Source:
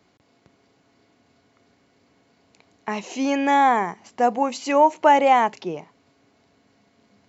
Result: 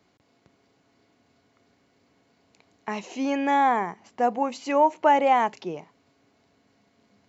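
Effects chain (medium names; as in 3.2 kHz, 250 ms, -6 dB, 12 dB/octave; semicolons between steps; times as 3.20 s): 3.06–5.40 s: treble shelf 4.7 kHz -7 dB; trim -3.5 dB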